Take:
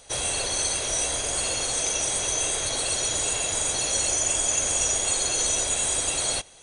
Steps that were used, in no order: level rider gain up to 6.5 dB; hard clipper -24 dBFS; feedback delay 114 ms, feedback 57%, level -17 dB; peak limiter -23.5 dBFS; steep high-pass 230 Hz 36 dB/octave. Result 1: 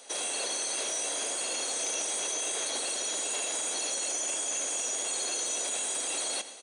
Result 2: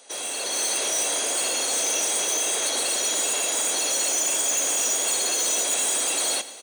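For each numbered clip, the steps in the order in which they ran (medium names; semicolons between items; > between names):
level rider > peak limiter > feedback delay > hard clipper > steep high-pass; hard clipper > steep high-pass > peak limiter > feedback delay > level rider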